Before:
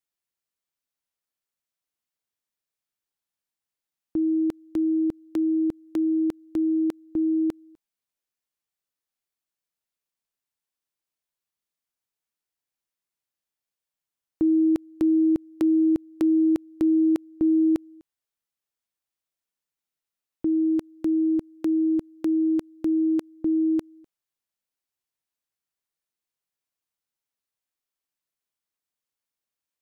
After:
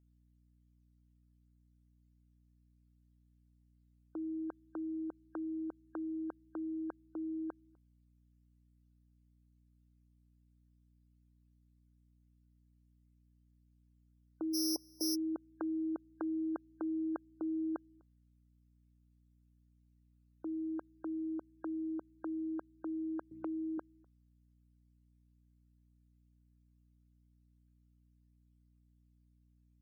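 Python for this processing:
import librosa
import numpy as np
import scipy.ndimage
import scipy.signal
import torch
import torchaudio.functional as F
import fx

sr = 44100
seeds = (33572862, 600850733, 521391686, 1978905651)

y = fx.sample_sort(x, sr, block=8, at=(14.53, 15.14), fade=0.02)
y = scipy.signal.sosfilt(scipy.signal.butter(2, 770.0, 'highpass', fs=sr, output='sos'), y)
y = fx.spec_topn(y, sr, count=64)
y = fx.add_hum(y, sr, base_hz=60, snr_db=25)
y = fx.band_squash(y, sr, depth_pct=70, at=(23.31, 23.78))
y = y * librosa.db_to_amplitude(-1.0)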